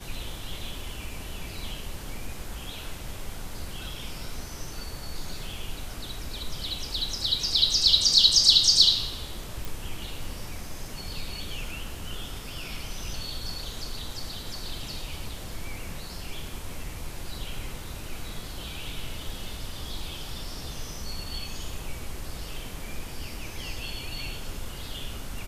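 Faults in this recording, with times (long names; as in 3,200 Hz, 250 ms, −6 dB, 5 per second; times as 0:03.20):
0:09.65: click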